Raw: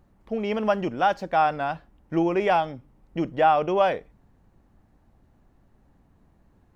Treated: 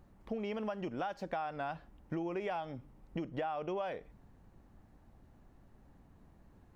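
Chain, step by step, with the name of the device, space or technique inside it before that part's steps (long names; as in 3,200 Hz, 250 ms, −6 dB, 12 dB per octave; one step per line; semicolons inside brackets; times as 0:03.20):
serial compression, peaks first (downward compressor 5 to 1, threshold −29 dBFS, peak gain reduction 13 dB; downward compressor 2 to 1, threshold −37 dBFS, peak gain reduction 6.5 dB)
level −1 dB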